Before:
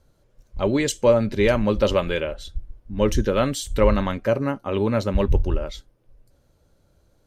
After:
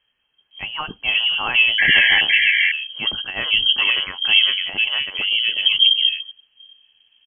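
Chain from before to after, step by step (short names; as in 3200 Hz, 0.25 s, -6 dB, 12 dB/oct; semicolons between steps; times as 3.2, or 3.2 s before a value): painted sound noise, 1.78–2.21, 800–1600 Hz -14 dBFS; inverted band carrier 3200 Hz; bands offset in time lows, highs 0.51 s, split 2100 Hz; gain +3 dB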